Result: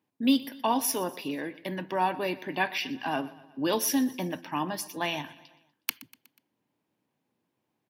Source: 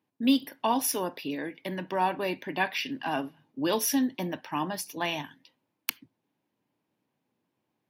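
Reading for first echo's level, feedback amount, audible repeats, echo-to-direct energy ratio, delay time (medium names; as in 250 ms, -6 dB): -19.0 dB, 54%, 3, -17.5 dB, 122 ms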